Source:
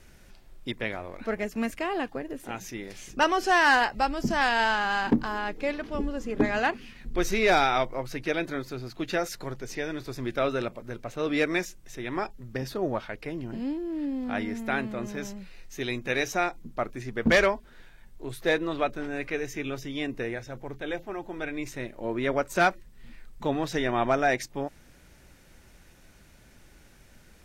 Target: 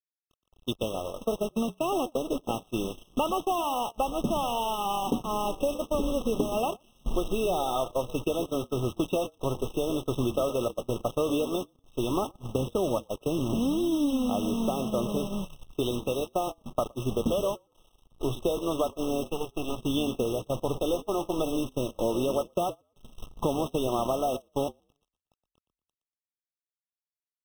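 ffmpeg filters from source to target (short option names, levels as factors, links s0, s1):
-filter_complex "[0:a]asplit=3[s0][s1][s2];[s0]afade=t=out:st=19.25:d=0.02[s3];[s1]aeval=exprs='max(val(0),0)':c=same,afade=t=in:st=19.25:d=0.02,afade=t=out:st=19.81:d=0.02[s4];[s2]afade=t=in:st=19.81:d=0.02[s5];[s3][s4][s5]amix=inputs=3:normalize=0,adynamicequalizer=threshold=0.00794:dfrequency=550:dqfactor=2.6:tfrequency=550:tqfactor=2.6:attack=5:release=100:ratio=0.375:range=2.5:mode=boostabove:tftype=bell,dynaudnorm=f=220:g=21:m=1.78,asplit=2[s6][s7];[s7]alimiter=limit=0.251:level=0:latency=1:release=292,volume=1.12[s8];[s6][s8]amix=inputs=2:normalize=0,acompressor=threshold=0.0631:ratio=10,aresample=8000,aresample=44100,acrusher=bits=5:mix=0:aa=0.000001,asplit=4[s9][s10][s11][s12];[s10]adelay=118,afreqshift=-43,volume=0.266[s13];[s11]adelay=236,afreqshift=-86,volume=0.0822[s14];[s12]adelay=354,afreqshift=-129,volume=0.0257[s15];[s9][s13][s14][s15]amix=inputs=4:normalize=0,agate=range=0.0631:threshold=0.0355:ratio=16:detection=peak,afftfilt=real='re*eq(mod(floor(b*sr/1024/1300),2),0)':imag='im*eq(mod(floor(b*sr/1024/1300),2),0)':win_size=1024:overlap=0.75"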